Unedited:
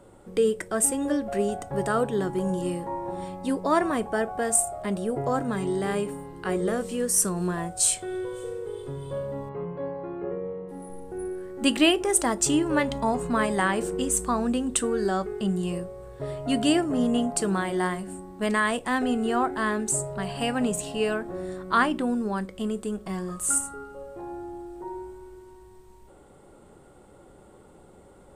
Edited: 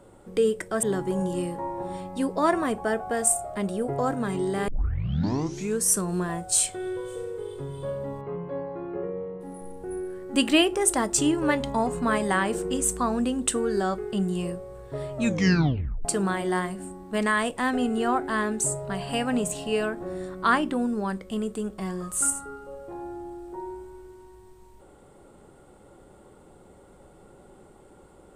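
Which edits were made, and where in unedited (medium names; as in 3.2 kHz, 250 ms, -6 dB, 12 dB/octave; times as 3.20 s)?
0.83–2.11 s: delete
5.96 s: tape start 1.17 s
16.41 s: tape stop 0.92 s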